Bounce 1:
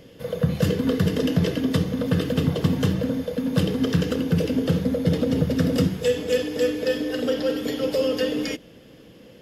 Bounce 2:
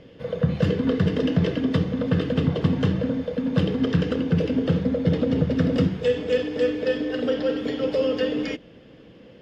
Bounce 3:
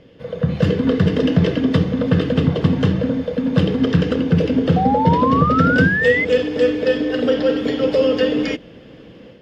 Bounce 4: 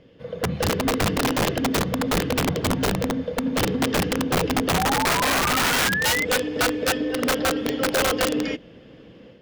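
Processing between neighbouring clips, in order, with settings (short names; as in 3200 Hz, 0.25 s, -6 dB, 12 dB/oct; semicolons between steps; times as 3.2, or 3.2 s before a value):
LPF 3400 Hz 12 dB/oct
AGC gain up to 7 dB; painted sound rise, 4.76–6.25, 730–2100 Hz -19 dBFS
wrapped overs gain 10.5 dB; gain -5 dB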